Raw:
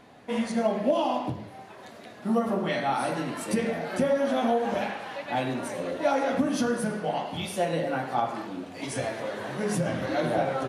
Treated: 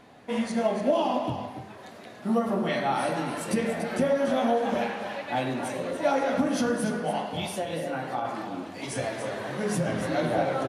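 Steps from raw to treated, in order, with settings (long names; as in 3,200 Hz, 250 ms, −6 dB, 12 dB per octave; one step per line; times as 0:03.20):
0:07.49–0:08.25: downward compressor 4 to 1, threshold −28 dBFS, peak gain reduction 6.5 dB
single-tap delay 288 ms −9 dB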